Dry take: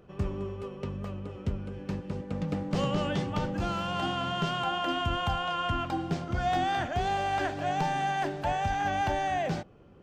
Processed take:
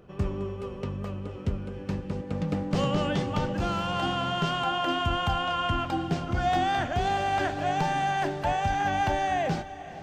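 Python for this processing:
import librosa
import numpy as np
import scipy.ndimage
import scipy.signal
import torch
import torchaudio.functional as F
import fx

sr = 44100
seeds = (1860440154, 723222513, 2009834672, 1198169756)

y = fx.echo_diffused(x, sr, ms=495, feedback_pct=45, wet_db=-15.0)
y = F.gain(torch.from_numpy(y), 2.5).numpy()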